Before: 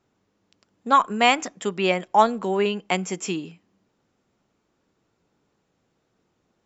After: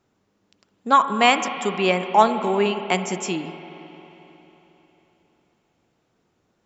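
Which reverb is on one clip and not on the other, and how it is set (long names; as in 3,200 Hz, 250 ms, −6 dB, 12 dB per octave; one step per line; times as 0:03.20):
spring reverb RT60 3.7 s, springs 45/55 ms, chirp 35 ms, DRR 9 dB
level +1.5 dB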